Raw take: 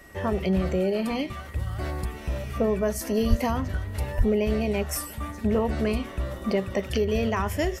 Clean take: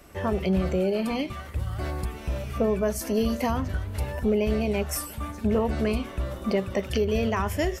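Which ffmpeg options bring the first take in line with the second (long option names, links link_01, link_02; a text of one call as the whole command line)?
ffmpeg -i in.wav -filter_complex "[0:a]bandreject=frequency=1900:width=30,asplit=3[link_01][link_02][link_03];[link_01]afade=type=out:start_time=3.29:duration=0.02[link_04];[link_02]highpass=frequency=140:width=0.5412,highpass=frequency=140:width=1.3066,afade=type=in:start_time=3.29:duration=0.02,afade=type=out:start_time=3.41:duration=0.02[link_05];[link_03]afade=type=in:start_time=3.41:duration=0.02[link_06];[link_04][link_05][link_06]amix=inputs=3:normalize=0,asplit=3[link_07][link_08][link_09];[link_07]afade=type=out:start_time=4.17:duration=0.02[link_10];[link_08]highpass=frequency=140:width=0.5412,highpass=frequency=140:width=1.3066,afade=type=in:start_time=4.17:duration=0.02,afade=type=out:start_time=4.29:duration=0.02[link_11];[link_09]afade=type=in:start_time=4.29:duration=0.02[link_12];[link_10][link_11][link_12]amix=inputs=3:normalize=0" out.wav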